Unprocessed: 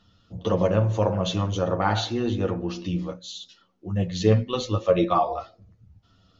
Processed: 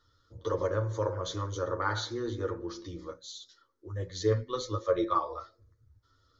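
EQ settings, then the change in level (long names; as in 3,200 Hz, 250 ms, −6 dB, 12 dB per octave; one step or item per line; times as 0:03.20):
parametric band 3,100 Hz +6 dB 2.7 octaves
phaser with its sweep stopped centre 730 Hz, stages 6
−6.0 dB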